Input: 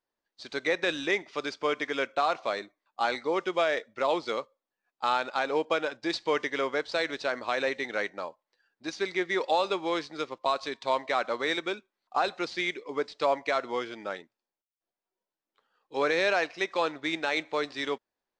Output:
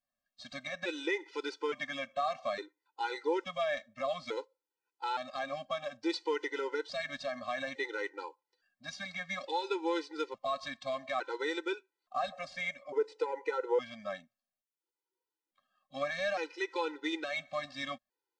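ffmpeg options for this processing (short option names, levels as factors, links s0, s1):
-filter_complex "[0:a]asettb=1/sr,asplit=3[s0][s1][s2];[s0]atrim=end=12.324[s3];[s1]atrim=start=12.32:end=13.79,asetpts=PTS-STARTPTS,afade=t=in:d=0.004:c=qsin,afade=t=out:st=1.466:d=0.004:c=qsin,equalizer=f=125:t=o:w=1:g=-3,equalizer=f=250:t=o:w=1:g=-8,equalizer=f=500:t=o:w=1:g=12,equalizer=f=4000:t=o:w=1:g=-7[s4];[s2]atrim=start=13.786[s5];[s3][s4]acrossfade=d=0.004:c1=hsin:c2=qsin[s6];[s6][s5]acrossfade=d=0.004:c1=qsin:c2=hsin,acontrast=81,alimiter=limit=0.224:level=0:latency=1:release=112,afftfilt=real='re*gt(sin(2*PI*0.58*pts/sr)*(1-2*mod(floor(b*sr/1024/260),2)),0)':imag='im*gt(sin(2*PI*0.58*pts/sr)*(1-2*mod(floor(b*sr/1024/260),2)),0)':win_size=1024:overlap=0.75,volume=0.398"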